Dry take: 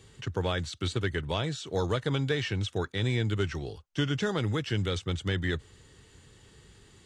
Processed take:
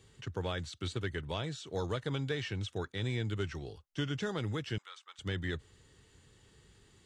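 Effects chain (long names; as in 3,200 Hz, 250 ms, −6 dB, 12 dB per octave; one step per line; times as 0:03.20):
0:04.78–0:05.19: four-pole ladder high-pass 920 Hz, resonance 50%
level −6.5 dB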